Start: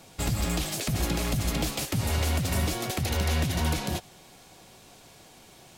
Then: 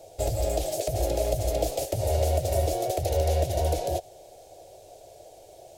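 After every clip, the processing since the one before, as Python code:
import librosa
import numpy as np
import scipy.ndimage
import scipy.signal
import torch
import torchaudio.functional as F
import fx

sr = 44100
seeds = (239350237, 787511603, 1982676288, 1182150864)

y = fx.curve_eq(x, sr, hz=(100.0, 220.0, 330.0, 630.0, 1100.0, 6600.0), db=(0, -20, -1, 14, -17, -3))
y = F.gain(torch.from_numpy(y), 1.0).numpy()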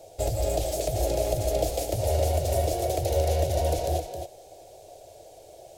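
y = x + 10.0 ** (-7.5 / 20.0) * np.pad(x, (int(266 * sr / 1000.0), 0))[:len(x)]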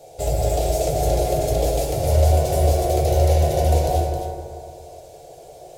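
y = fx.rev_fdn(x, sr, rt60_s=2.2, lf_ratio=1.0, hf_ratio=0.3, size_ms=40.0, drr_db=-3.5)
y = F.gain(torch.from_numpy(y), 1.5).numpy()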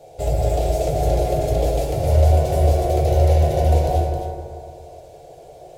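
y = fx.bass_treble(x, sr, bass_db=2, treble_db=-7)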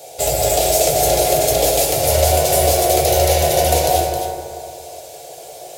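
y = fx.tilt_eq(x, sr, slope=4.0)
y = F.gain(torch.from_numpy(y), 8.5).numpy()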